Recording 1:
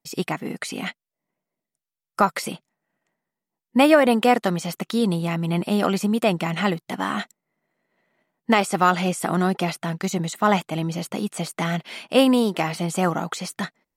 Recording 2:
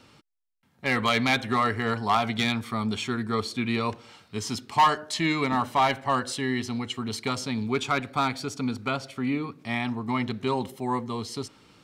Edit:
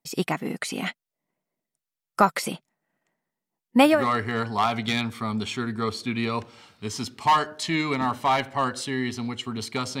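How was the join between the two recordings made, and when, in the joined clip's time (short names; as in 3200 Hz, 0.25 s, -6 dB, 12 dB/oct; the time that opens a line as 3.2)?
recording 1
3.95 switch to recording 2 from 1.46 s, crossfade 0.28 s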